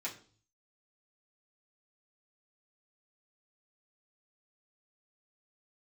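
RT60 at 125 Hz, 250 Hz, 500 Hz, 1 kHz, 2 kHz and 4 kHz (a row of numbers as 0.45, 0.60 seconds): 0.85, 0.55, 0.45, 0.40, 0.35, 0.45 seconds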